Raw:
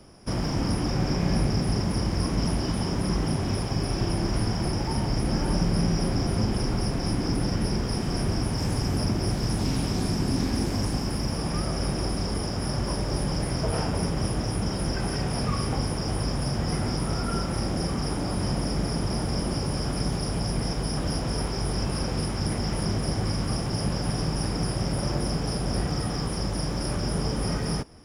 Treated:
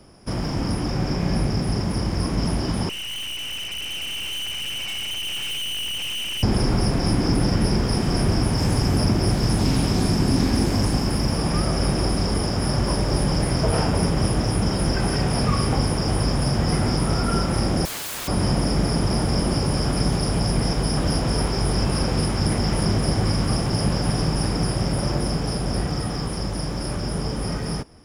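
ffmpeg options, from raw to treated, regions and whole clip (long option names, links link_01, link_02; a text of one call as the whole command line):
ffmpeg -i in.wav -filter_complex "[0:a]asettb=1/sr,asplit=3[link_01][link_02][link_03];[link_01]atrim=end=2.894[link_04];[link_02]atrim=start=2.89:end=6.43,asetpts=PTS-STARTPTS,afade=type=in:duration=0.004:curve=qsin,afade=type=out:start_time=3.536:duration=0.004:curve=qsin,lowpass=frequency=2600:width_type=q:width=0.5098,lowpass=frequency=2600:width_type=q:width=0.6013,lowpass=frequency=2600:width_type=q:width=0.9,lowpass=frequency=2600:width_type=q:width=2.563,afreqshift=-3100,aeval=exprs='(tanh(44.7*val(0)+0.7)-tanh(0.7))/44.7':channel_layout=same[link_05];[link_03]atrim=start=6.426[link_06];[link_04][link_05]acrossfade=duration=0.004:curve1=hsin:curve2=qsin[link_07];[link_07][link_06]acrossfade=duration=0.004:curve1=qsin:curve2=hsin,asettb=1/sr,asplit=3[link_08][link_09][link_10];[link_08]atrim=end=17.854[link_11];[link_09]atrim=start=17.85:end=18.28,asetpts=PTS-STARTPTS,afade=type=in:duration=0.004:curve=qsin,afade=type=out:start_time=0.426:duration=0.004:curve=qsin,highpass=50,aeval=exprs='(mod(39.8*val(0)+1,2)-1)/39.8':channel_layout=same[link_12];[link_10]atrim=start=18.276[link_13];[link_11][link_12]acrossfade=duration=0.004:curve1=hsin:curve2=qsin[link_14];[link_14][link_13]acrossfade=duration=0.004:curve1=qsin:curve2=hsin,bandreject=frequency=5700:width=29,dynaudnorm=framelen=530:gausssize=13:maxgain=4.5dB,volume=1.5dB" out.wav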